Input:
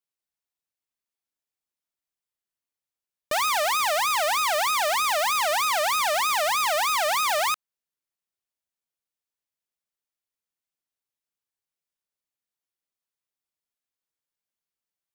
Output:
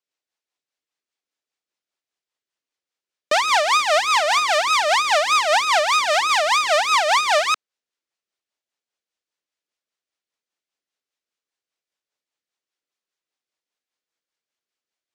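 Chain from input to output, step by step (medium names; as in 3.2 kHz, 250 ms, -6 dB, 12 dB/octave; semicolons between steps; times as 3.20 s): three-band isolator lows -15 dB, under 250 Hz, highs -23 dB, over 7.7 kHz; 4.02–4.44 s: de-hum 351.6 Hz, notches 30; rotary cabinet horn 5 Hz; trim +9 dB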